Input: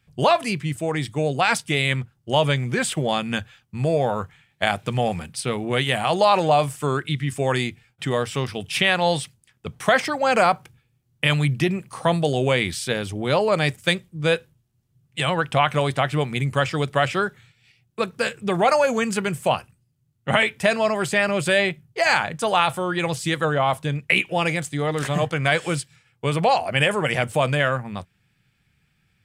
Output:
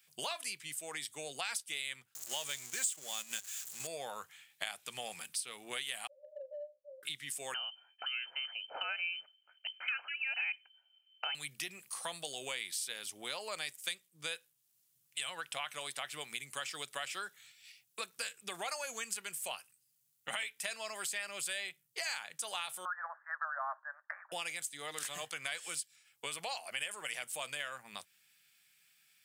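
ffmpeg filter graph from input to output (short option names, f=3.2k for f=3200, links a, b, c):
-filter_complex "[0:a]asettb=1/sr,asplit=3[a][b][c];[a]atrim=end=2.154[d];[b]atrim=start=2.15:end=3.87,asetpts=PTS-STARTPTS,afade=t=in:d=0.004:c=qsin,afade=t=out:st=1.716:d=0.004:c=qsin,aeval=exprs='val(0)+0.5*0.0473*sgn(val(0))':c=same,agate=range=-8dB:threshold=-25dB:ratio=16:release=100:detection=peak,equalizer=f=7.1k:w=2.7:g=13[e];[c]atrim=start=3.866[f];[d][e]acrossfade=d=0.004:c1=hsin:c2=qsin[g];[g][f]acrossfade=d=0.004:c1=qsin:c2=hsin,asettb=1/sr,asplit=3[h][i][j];[h]atrim=end=6.074[k];[i]atrim=start=6.07:end=7.03,asetpts=PTS-STARTPTS,afade=t=in:d=0.004:c=qsin,afade=t=out:st=0.956:d=0.004:c=qsin,asuperpass=centerf=560:order=20:qfactor=7.1,acompressor=threshold=-29dB:ratio=2.5:attack=3.2:release=140:knee=1:detection=peak,asplit=2[l][m];[m]adelay=39,volume=-14dB[n];[l][n]amix=inputs=2:normalize=0,atrim=end_sample=42336[o];[j]atrim=start=7.026[p];[k][o]acrossfade=d=0.004:c1=hsin:c2=qsin[q];[q][p]acrossfade=d=0.004:c1=qsin:c2=hsin,asettb=1/sr,asplit=3[r][s][t];[r]atrim=end=7.544[u];[s]atrim=start=7.54:end=11.35,asetpts=PTS-STARTPTS,afade=t=in:d=0.004:c=qsin,afade=t=out:st=3.806:d=0.004:c=qsin,lowshelf=f=180:g=-8.5,aecho=1:1:1.2:0.56,atrim=end_sample=168021,lowpass=f=2.7k:t=q:w=0.5098,lowpass=f=2.7k:t=q:w=0.6013,lowpass=f=2.7k:t=q:w=0.9,lowpass=f=2.7k:t=q:w=2.563,afreqshift=-3200[v];[t]atrim=start=11.346[w];[u][v]acrossfade=d=0.004:c1=hsin:c2=qsin[x];[x][w]acrossfade=d=0.004:c1=qsin:c2=hsin,asettb=1/sr,asplit=3[y][z][aa];[y]atrim=end=22.854[ab];[z]atrim=start=22.85:end=24.32,asetpts=PTS-STARTPTS,afade=t=in:d=0.004:c=qsin,afade=t=out:st=1.466:d=0.004:c=qsin,asuperpass=centerf=1000:order=20:qfactor=0.85,equalizer=f=1.3k:w=1.1:g=12[ac];[aa]atrim=start=24.316[ad];[ab][ac]acrossfade=d=0.004:c1=hsin:c2=qsin[ae];[ae][ad]acrossfade=d=0.004:c1=qsin:c2=hsin,highpass=110,aderivative,acompressor=threshold=-50dB:ratio=3,volume=8.5dB"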